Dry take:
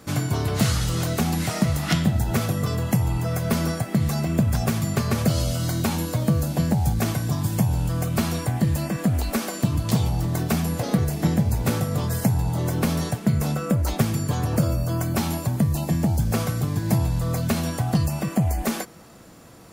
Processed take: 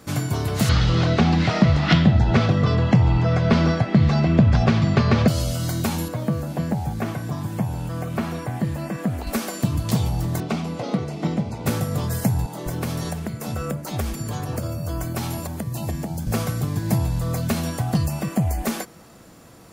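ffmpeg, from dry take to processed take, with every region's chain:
-filter_complex "[0:a]asettb=1/sr,asplit=3[s0][s1][s2];[s0]atrim=end=0.694[s3];[s1]atrim=start=0.69:end=5.28,asetpts=PTS-STARTPTS,afade=t=in:d=0.004:c=qsin,afade=t=out:st=4.586:d=0.004:c=qsin,lowpass=f=4500:w=0.5412,lowpass=f=4500:w=1.3066,acontrast=50[s4];[s2]atrim=start=5.276[s5];[s3][s4]acrossfade=d=0.004:c1=hsin:c2=qsin[s6];[s6][s5]acrossfade=d=0.004:c1=qsin:c2=hsin,asettb=1/sr,asplit=3[s7][s8][s9];[s7]atrim=end=6.084[s10];[s8]atrim=start=6.08:end=9.27,asetpts=PTS-STARTPTS,afade=t=in:d=0.004:c=qsin,afade=t=out:st=3.186:d=0.004:c=qsin,acrossover=split=2600[s11][s12];[s12]acompressor=threshold=0.00501:ratio=4:attack=1:release=60[s13];[s11][s13]amix=inputs=2:normalize=0,highpass=f=160:p=1[s14];[s9]atrim=start=9.266[s15];[s10][s14]acrossfade=d=0.004:c1=hsin:c2=qsin[s16];[s16][s15]acrossfade=d=0.004:c1=qsin:c2=hsin,asettb=1/sr,asplit=3[s17][s18][s19];[s17]atrim=end=10.404[s20];[s18]atrim=start=10.4:end=11.66,asetpts=PTS-STARTPTS,afade=t=in:d=0.004:c=qsin,afade=t=out:st=1.256:d=0.004:c=qsin,highpass=170,lowpass=4300,bandreject=f=1700:w=5.4[s21];[s19]atrim=start=11.656[s22];[s20][s21]acrossfade=d=0.004:c1=hsin:c2=qsin[s23];[s23][s22]acrossfade=d=0.004:c1=qsin:c2=hsin,asettb=1/sr,asplit=3[s24][s25][s26];[s24]atrim=end=12.464[s27];[s25]atrim=start=12.46:end=16.27,asetpts=PTS-STARTPTS,afade=t=in:d=0.004:c=qsin,afade=t=out:st=3.806:d=0.004:c=qsin,acompressor=threshold=0.0708:ratio=2.5:attack=3.2:release=140:knee=1:detection=peak,acrossover=split=180[s28][s29];[s28]adelay=200[s30];[s30][s29]amix=inputs=2:normalize=0,atrim=end_sample=168021[s31];[s26]atrim=start=16.266[s32];[s27][s31]acrossfade=d=0.004:c1=hsin:c2=qsin[s33];[s33][s32]acrossfade=d=0.004:c1=qsin:c2=hsin"

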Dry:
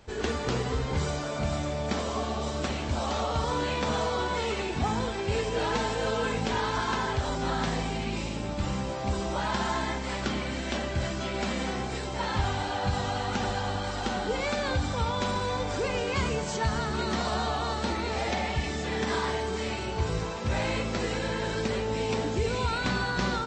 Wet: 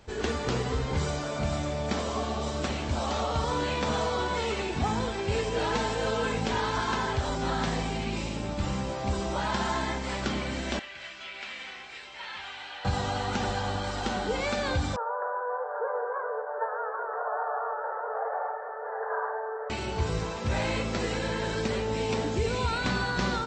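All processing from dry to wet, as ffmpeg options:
-filter_complex "[0:a]asettb=1/sr,asplit=3[s0][s1][s2];[s0]atrim=end=10.794[s3];[s1]atrim=start=10.79:end=12.85,asetpts=PTS-STARTPTS,afade=t=in:d=0.004:c=qsin,afade=t=out:st=2.056:d=0.004:c=qsin,bandpass=f=2500:t=q:w=1.7,aeval=exprs='val(0)+0.000355*(sin(2*PI*50*n/s)+sin(2*PI*2*50*n/s)/2+sin(2*PI*3*50*n/s)/3+sin(2*PI*4*50*n/s)/4+sin(2*PI*5*50*n/s)/5)':c=same[s4];[s2]atrim=start=12.846[s5];[s3][s4]acrossfade=d=0.004:c1=hsin:c2=qsin[s6];[s6][s5]acrossfade=d=0.004:c1=qsin:c2=hsin,asettb=1/sr,asplit=3[s7][s8][s9];[s7]atrim=end=14.964[s10];[s8]atrim=start=14.96:end=19.7,asetpts=PTS-STARTPTS,afade=t=in:d=0.004:c=qsin,afade=t=out:st=4.736:d=0.004:c=qsin,asuperpass=centerf=860:order=20:qfactor=0.69,aecho=1:1:782:0.447,atrim=end_sample=209034[s11];[s9]atrim=start=19.696[s12];[s10][s11]acrossfade=d=0.004:c1=hsin:c2=qsin[s13];[s13][s12]acrossfade=d=0.004:c1=qsin:c2=hsin"

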